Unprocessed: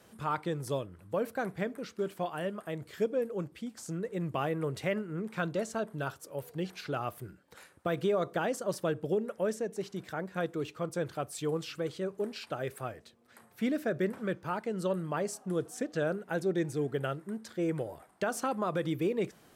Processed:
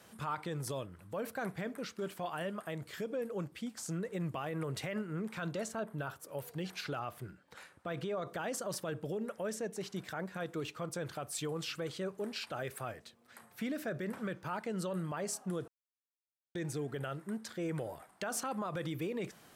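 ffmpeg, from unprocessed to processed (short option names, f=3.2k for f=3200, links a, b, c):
-filter_complex "[0:a]asettb=1/sr,asplit=3[a][b][c];[a]atrim=end=5.684[d];[b]atrim=start=5.68:end=6.29,asetpts=PTS-STARTPTS,afade=t=in:d=0.004:c=qsin,afade=t=out:st=0.606:d=0.004:c=qsin,equalizer=f=5.7k:w=0.63:g=-7.5[e];[c]atrim=start=6.286[f];[d][e]acrossfade=d=0.004:c1=hsin:c2=qsin[g];[g][f]acrossfade=d=0.004:c1=qsin:c2=hsin,asettb=1/sr,asplit=3[h][i][j];[h]atrim=end=6.994[k];[i]atrim=start=6.99:end=8.27,asetpts=PTS-STARTPTS,afade=t=in:d=0.004:c=qsin,afade=t=out:st=1.276:d=0.004:c=qsin,highshelf=f=8k:g=-10.5[l];[j]atrim=start=8.266[m];[k][l]acrossfade=d=0.004:c1=hsin:c2=qsin[n];[n][m]acrossfade=d=0.004:c1=qsin:c2=hsin,asplit=3[o][p][q];[o]atrim=end=15.68,asetpts=PTS-STARTPTS,afade=t=out:st=15.676:d=0.004:c=hsin[r];[p]atrim=start=15.68:end=16.55,asetpts=PTS-STARTPTS,volume=0[s];[q]atrim=start=16.55,asetpts=PTS-STARTPTS,afade=t=in:d=0.004:c=hsin[t];[r][s][t]concat=n=3:v=0:a=1,lowshelf=f=93:g=-8,alimiter=level_in=5dB:limit=-24dB:level=0:latency=1:release=38,volume=-5dB,equalizer=f=380:w=1:g=-5,volume=2.5dB"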